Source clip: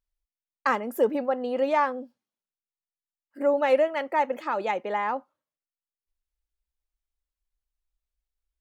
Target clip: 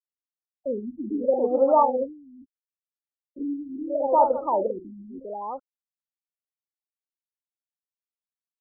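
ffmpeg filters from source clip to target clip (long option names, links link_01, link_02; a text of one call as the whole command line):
ffmpeg -i in.wav -filter_complex "[0:a]afftfilt=real='re*gte(hypot(re,im),0.0158)':imag='im*gte(hypot(re,im),0.0158)':win_size=1024:overlap=0.75,equalizer=frequency=100:width_type=o:width=0.67:gain=-10,equalizer=frequency=250:width_type=o:width=0.67:gain=-5,equalizer=frequency=1600:width_type=o:width=0.67:gain=-10,acrusher=bits=7:mix=0:aa=0.5,asplit=2[link_01][link_02];[link_02]aecho=0:1:50|52|53|396:0.119|0.355|0.1|0.355[link_03];[link_01][link_03]amix=inputs=2:normalize=0,afftfilt=real='re*lt(b*sr/1024,340*pow(1500/340,0.5+0.5*sin(2*PI*0.75*pts/sr)))':imag='im*lt(b*sr/1024,340*pow(1500/340,0.5+0.5*sin(2*PI*0.75*pts/sr)))':win_size=1024:overlap=0.75,volume=6.5dB" out.wav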